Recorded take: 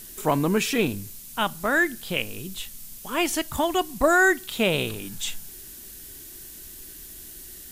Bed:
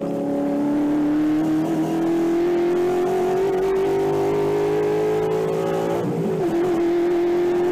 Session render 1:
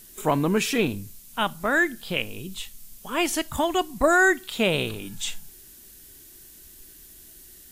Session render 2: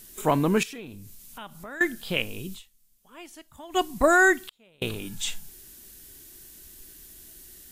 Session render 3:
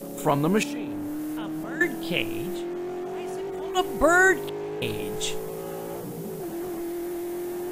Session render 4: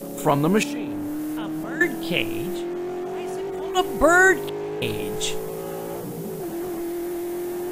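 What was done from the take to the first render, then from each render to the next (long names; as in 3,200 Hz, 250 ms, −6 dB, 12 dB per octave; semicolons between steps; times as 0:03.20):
noise reduction from a noise print 6 dB
0:00.63–0:01.81: downward compressor 3 to 1, threshold −42 dBFS; 0:02.55–0:03.77: duck −20.5 dB, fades 0.30 s exponential; 0:04.38–0:04.82: gate with flip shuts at −25 dBFS, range −36 dB
mix in bed −12.5 dB
level +3 dB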